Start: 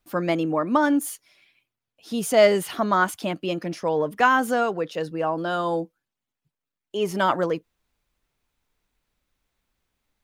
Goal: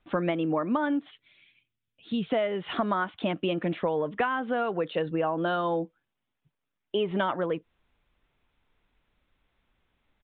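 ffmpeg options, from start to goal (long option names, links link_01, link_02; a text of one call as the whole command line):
ffmpeg -i in.wav -filter_complex "[0:a]asettb=1/sr,asplit=3[link_01][link_02][link_03];[link_01]atrim=end=1.114[link_04];[link_02]atrim=start=1.11:end=2.3,asetpts=PTS-STARTPTS,afade=type=in:duration=0.004:curve=qsin,afade=type=out:start_time=1.186:duration=0.004:curve=qsin,equalizer=frequency=790:width=0.54:gain=-14.5[link_05];[link_03]atrim=start=2.296[link_06];[link_04][link_05]acrossfade=duration=0.004:curve1=hsin:curve2=qsin[link_07];[link_07][link_06]acrossfade=duration=0.004:curve1=qsin:curve2=hsin,acompressor=threshold=-28dB:ratio=16,aresample=8000,aresample=44100,volume=4.5dB" out.wav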